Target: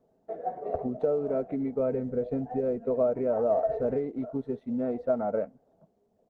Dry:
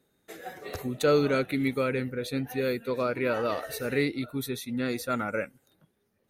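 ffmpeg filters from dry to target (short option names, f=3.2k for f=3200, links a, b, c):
-filter_complex "[0:a]asettb=1/sr,asplit=3[a][b][c];[a]atrim=end=1.794[d];[b]atrim=start=1.79:end=3.98,asetpts=PTS-STARTPTS,afade=t=in:d=0.004:c=qsin,afade=t=out:st=2.186:d=0.004:c=qsin,lowshelf=f=120:g=8.5[e];[c]atrim=start=3.976[f];[d][e]acrossfade=d=0.004:c1=hsin:c2=qsin[g];[g][f]acrossfade=d=0.004:c1=qsin:c2=hsin,aecho=1:1:4.5:0.4,acompressor=threshold=-28dB:ratio=20,lowpass=f=680:t=q:w=4.9" -ar 48000 -c:a libopus -b:a 20k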